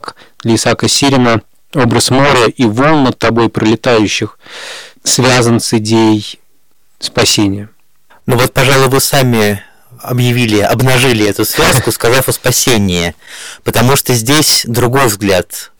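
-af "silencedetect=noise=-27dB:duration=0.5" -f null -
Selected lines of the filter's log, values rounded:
silence_start: 6.34
silence_end: 7.01 | silence_duration: 0.67
silence_start: 7.66
silence_end: 8.28 | silence_duration: 0.62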